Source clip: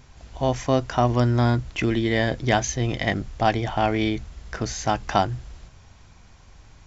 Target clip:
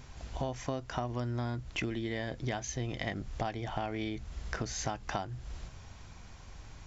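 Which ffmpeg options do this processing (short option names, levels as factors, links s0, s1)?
-af "acompressor=threshold=0.0251:ratio=10"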